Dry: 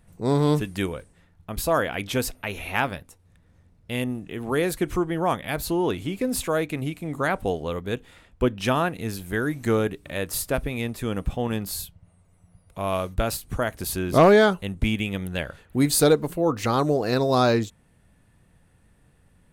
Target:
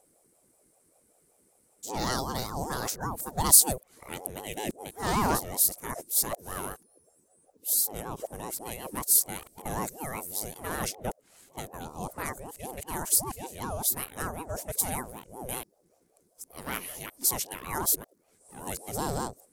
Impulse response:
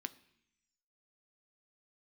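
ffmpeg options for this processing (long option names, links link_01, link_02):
-af "areverse,aexciter=amount=9.6:drive=1.8:freq=4700,aeval=exprs='val(0)*sin(2*PI*450*n/s+450*0.45/5.2*sin(2*PI*5.2*n/s))':channel_layout=same,volume=-8.5dB"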